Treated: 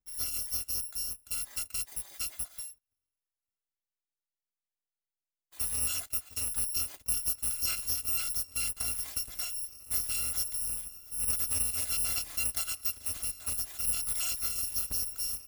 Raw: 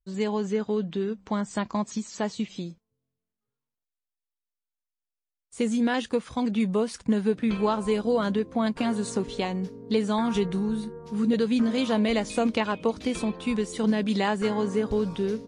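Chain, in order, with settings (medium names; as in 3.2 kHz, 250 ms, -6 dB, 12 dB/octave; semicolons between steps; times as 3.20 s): bit-reversed sample order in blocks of 256 samples; trim -7.5 dB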